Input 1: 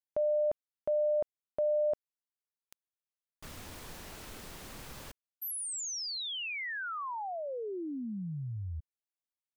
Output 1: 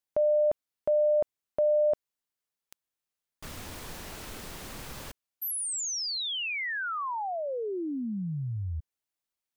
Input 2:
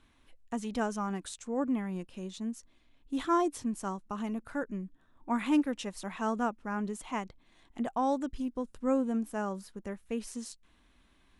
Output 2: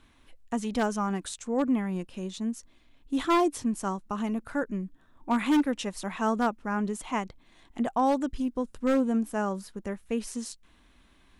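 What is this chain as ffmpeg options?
-af "aeval=exprs='0.0794*(abs(mod(val(0)/0.0794+3,4)-2)-1)':c=same,volume=5dB"

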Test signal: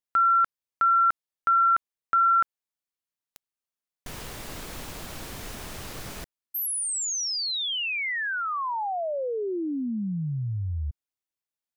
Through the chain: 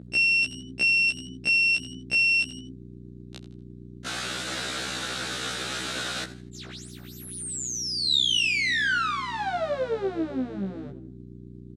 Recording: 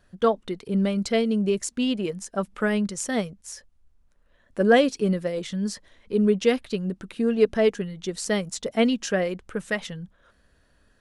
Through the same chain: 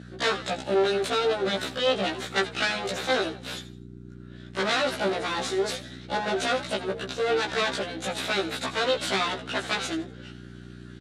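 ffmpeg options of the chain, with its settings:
-filter_complex "[0:a]equalizer=f=1.4k:w=5.2:g=10.5,acrossover=split=1300[a][b];[b]acompressor=threshold=-34dB:ratio=6:attack=24:release=104[c];[a][c]amix=inputs=2:normalize=0,aeval=exprs='abs(val(0))':c=same,acontrast=87,asoftclip=type=tanh:threshold=-11.5dB,aeval=exprs='val(0)+0.0282*(sin(2*PI*60*n/s)+sin(2*PI*2*60*n/s)/2+sin(2*PI*3*60*n/s)/3+sin(2*PI*4*60*n/s)/4+sin(2*PI*5*60*n/s)/5)':c=same,asplit=4[d][e][f][g];[e]adelay=82,afreqshift=86,volume=-15dB[h];[f]adelay=164,afreqshift=172,volume=-24.9dB[i];[g]adelay=246,afreqshift=258,volume=-34.8dB[j];[d][h][i][j]amix=inputs=4:normalize=0,alimiter=limit=-14dB:level=0:latency=1:release=42,highpass=250,equalizer=f=980:t=q:w=4:g=-8,equalizer=f=1.5k:t=q:w=4:g=4,equalizer=f=3.8k:t=q:w=4:g=9,lowpass=f=9k:w=0.5412,lowpass=f=9k:w=1.3066,afftfilt=real='re*1.73*eq(mod(b,3),0)':imag='im*1.73*eq(mod(b,3),0)':win_size=2048:overlap=0.75,volume=4.5dB"

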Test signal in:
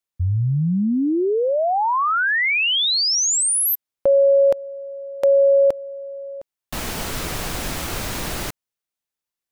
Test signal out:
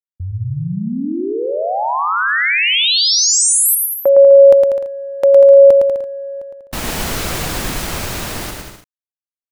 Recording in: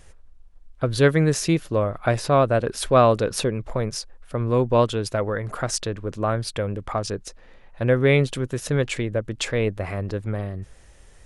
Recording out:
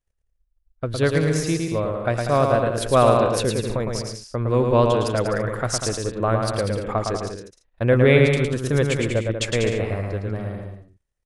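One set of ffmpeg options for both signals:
-filter_complex "[0:a]agate=range=-33dB:threshold=-32dB:ratio=3:release=24:detection=peak,dynaudnorm=f=650:g=7:m=11.5dB,asplit=2[a][b];[b]aecho=0:1:110|192.5|254.4|300.8|335.6:0.631|0.398|0.251|0.158|0.1[c];[a][c]amix=inputs=2:normalize=0,volume=-4dB"

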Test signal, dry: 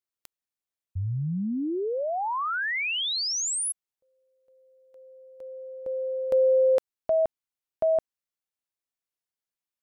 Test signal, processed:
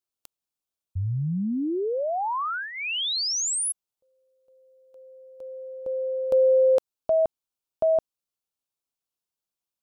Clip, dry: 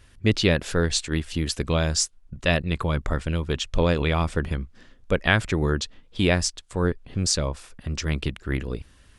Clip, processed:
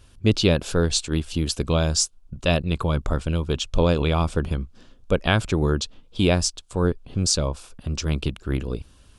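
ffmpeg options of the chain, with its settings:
-af "equalizer=f=1.9k:w=3.3:g=-12.5,volume=2dB"

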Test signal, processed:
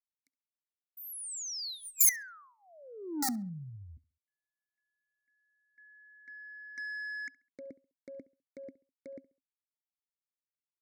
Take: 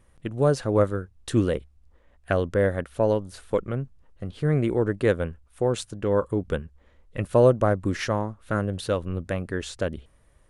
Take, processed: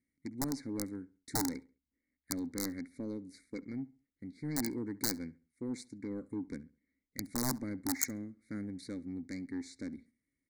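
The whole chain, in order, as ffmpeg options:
-filter_complex "[0:a]agate=range=-9dB:threshold=-47dB:ratio=16:detection=peak,asplit=3[a][b][c];[a]bandpass=f=270:t=q:w=8,volume=0dB[d];[b]bandpass=f=2.29k:t=q:w=8,volume=-6dB[e];[c]bandpass=f=3.01k:t=q:w=8,volume=-9dB[f];[d][e][f]amix=inputs=3:normalize=0,equalizer=f=2.2k:t=o:w=0.27:g=12,aeval=exprs='(mod(18.8*val(0)+1,2)-1)/18.8':c=same,crystalizer=i=0.5:c=0,asoftclip=type=tanh:threshold=-32dB,bass=f=250:g=5,treble=f=4k:g=13,aeval=exprs='0.168*(cos(1*acos(clip(val(0)/0.168,-1,1)))-cos(1*PI/2))+0.015*(cos(3*acos(clip(val(0)/0.168,-1,1)))-cos(3*PI/2))+0.00376*(cos(6*acos(clip(val(0)/0.168,-1,1)))-cos(6*PI/2))+0.00211*(cos(8*acos(clip(val(0)/0.168,-1,1)))-cos(8*PI/2))':c=same,asuperstop=centerf=2900:order=8:qfactor=1.5,asplit=2[g][h];[h]adelay=68,lowpass=f=3.3k:p=1,volume=-20dB,asplit=2[i][j];[j]adelay=68,lowpass=f=3.3k:p=1,volume=0.33,asplit=2[k][l];[l]adelay=68,lowpass=f=3.3k:p=1,volume=0.33[m];[i][k][m]amix=inputs=3:normalize=0[n];[g][n]amix=inputs=2:normalize=0,volume=2dB"

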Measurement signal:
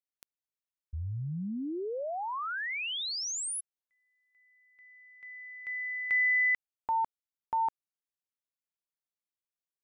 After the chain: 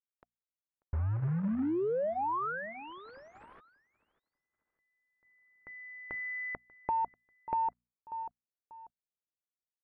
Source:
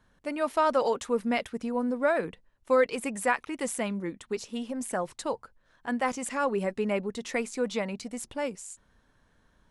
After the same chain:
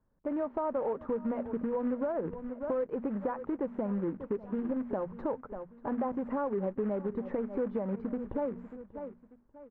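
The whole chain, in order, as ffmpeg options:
-filter_complex "[0:a]bandreject=f=60:t=h:w=6,bandreject=f=120:t=h:w=6,bandreject=f=180:t=h:w=6,bandreject=f=240:t=h:w=6,acrossover=split=1100[a][b];[a]dynaudnorm=f=130:g=9:m=6dB[c];[b]aderivative[d];[c][d]amix=inputs=2:normalize=0,agate=range=-15dB:threshold=-56dB:ratio=16:release=20:detection=rms,acrusher=bits=3:mode=log:mix=0:aa=0.000001,lowpass=f=1.6k:w=0.5412,lowpass=f=1.6k:w=1.3066,asplit=2[e][f];[f]aecho=0:1:590|1180:0.0841|0.0252[g];[e][g]amix=inputs=2:normalize=0,alimiter=limit=-14dB:level=0:latency=1:release=494,acompressor=threshold=-37dB:ratio=5:attack=6.2:release=154:knee=6:detection=rms,bandreject=f=710:w=12,volume=7dB"

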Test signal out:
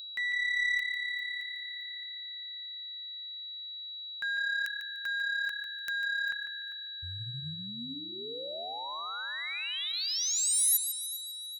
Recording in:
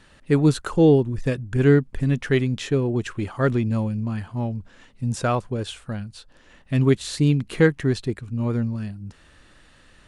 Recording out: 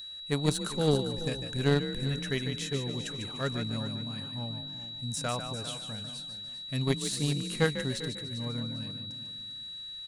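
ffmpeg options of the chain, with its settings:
-filter_complex "[0:a]equalizer=f=340:t=o:w=0.22:g=-12,asplit=2[a][b];[b]asplit=4[c][d][e][f];[c]adelay=148,afreqshift=35,volume=-8dB[g];[d]adelay=296,afreqshift=70,volume=-17.9dB[h];[e]adelay=444,afreqshift=105,volume=-27.8dB[i];[f]adelay=592,afreqshift=140,volume=-37.7dB[j];[g][h][i][j]amix=inputs=4:normalize=0[k];[a][k]amix=inputs=2:normalize=0,aeval=exprs='val(0)+0.02*sin(2*PI*3900*n/s)':c=same,aemphasis=mode=production:type=75kf,asplit=2[l][m];[m]aecho=0:1:398|796|1194:0.237|0.0664|0.0186[n];[l][n]amix=inputs=2:normalize=0,aeval=exprs='0.668*(cos(1*acos(clip(val(0)/0.668,-1,1)))-cos(1*PI/2))+0.119*(cos(3*acos(clip(val(0)/0.668,-1,1)))-cos(3*PI/2))':c=same,volume=-6dB"

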